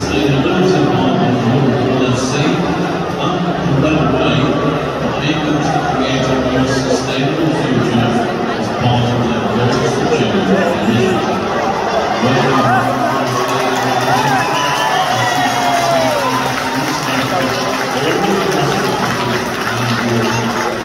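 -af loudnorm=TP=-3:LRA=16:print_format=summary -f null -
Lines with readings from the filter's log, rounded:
Input Integrated:    -14.4 LUFS
Input True Peak:      -1.7 dBTP
Input LRA:             1.5 LU
Input Threshold:     -24.4 LUFS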